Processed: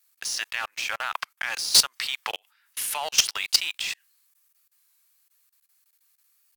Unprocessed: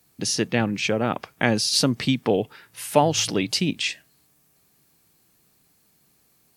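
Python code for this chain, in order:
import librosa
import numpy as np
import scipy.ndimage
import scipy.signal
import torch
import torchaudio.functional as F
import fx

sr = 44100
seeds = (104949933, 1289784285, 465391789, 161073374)

y = scipy.signal.sosfilt(scipy.signal.butter(4, 1100.0, 'highpass', fs=sr, output='sos'), x)
y = fx.high_shelf(y, sr, hz=7900.0, db=5.5)
y = fx.level_steps(y, sr, step_db=20)
y = fx.leveller(y, sr, passes=3)
y = fx.record_warp(y, sr, rpm=33.33, depth_cents=100.0)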